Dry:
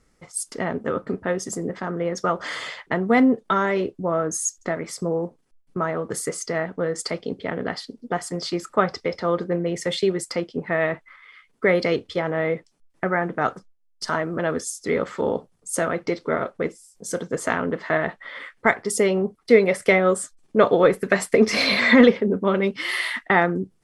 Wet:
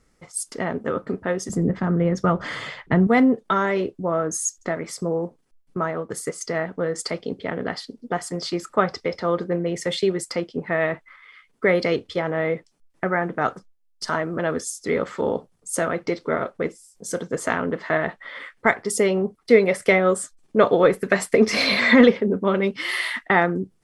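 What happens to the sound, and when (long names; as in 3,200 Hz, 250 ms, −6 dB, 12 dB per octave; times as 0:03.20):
0:01.49–0:03.07: bass and treble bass +14 dB, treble −6 dB
0:05.88–0:06.41: expander for the loud parts, over −38 dBFS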